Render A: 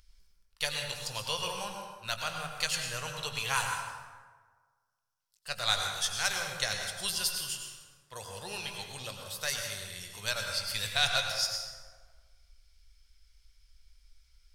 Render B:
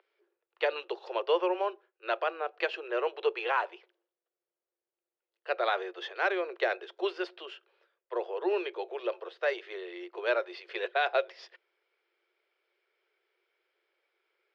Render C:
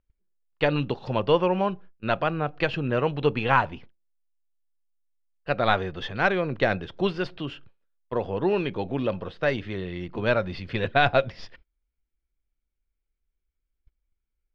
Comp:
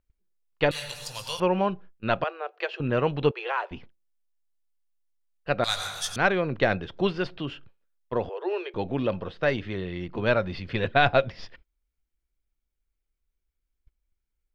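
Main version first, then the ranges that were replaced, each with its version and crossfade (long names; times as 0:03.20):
C
0:00.71–0:01.40: punch in from A
0:02.24–0:02.80: punch in from B
0:03.31–0:03.71: punch in from B
0:05.64–0:06.16: punch in from A
0:08.29–0:08.74: punch in from B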